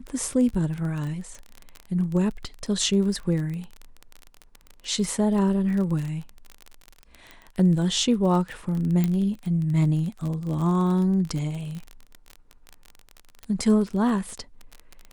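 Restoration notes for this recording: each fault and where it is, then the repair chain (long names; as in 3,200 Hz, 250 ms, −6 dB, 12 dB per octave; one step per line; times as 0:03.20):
surface crackle 27 per second −29 dBFS
0:09.04: click −12 dBFS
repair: click removal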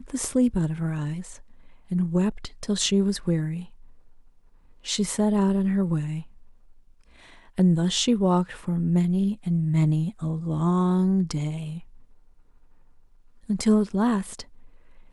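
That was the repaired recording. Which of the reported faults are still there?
none of them is left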